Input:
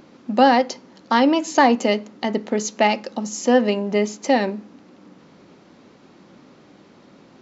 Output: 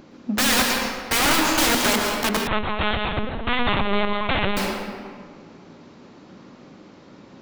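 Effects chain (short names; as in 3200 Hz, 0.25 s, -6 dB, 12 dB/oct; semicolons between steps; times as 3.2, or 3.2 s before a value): low shelf 82 Hz +8.5 dB; wrapped overs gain 15 dB; reverb RT60 1.8 s, pre-delay 0.11 s, DRR 0.5 dB; 2.47–4.57 LPC vocoder at 8 kHz pitch kept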